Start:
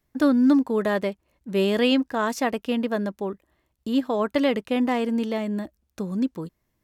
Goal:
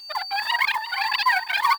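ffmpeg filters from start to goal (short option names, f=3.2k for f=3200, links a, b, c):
-filter_complex "[0:a]areverse,asplit=2[a][b];[b]acrusher=bits=4:mix=0:aa=0.000001,volume=-4dB[c];[a][c]amix=inputs=2:normalize=0,highpass=f=190:p=1,bandreject=f=50:t=h:w=6,bandreject=f=100:t=h:w=6,bandreject=f=150:t=h:w=6,bandreject=f=200:t=h:w=6,bandreject=f=250:t=h:w=6,bandreject=f=300:t=h:w=6,bandreject=f=350:t=h:w=6,bandreject=f=400:t=h:w=6,aeval=exprs='val(0)+0.0224*sin(2*PI*1200*n/s)':c=same,asetrate=168903,aresample=44100,aresample=11025,aresample=44100,asplit=2[d][e];[e]aecho=0:1:351|702|1053:0.316|0.0632|0.0126[f];[d][f]amix=inputs=2:normalize=0,acrusher=bits=5:mode=log:mix=0:aa=0.000001,asplit=2[g][h];[h]adelay=2.9,afreqshift=-1.2[i];[g][i]amix=inputs=2:normalize=1,volume=1.5dB"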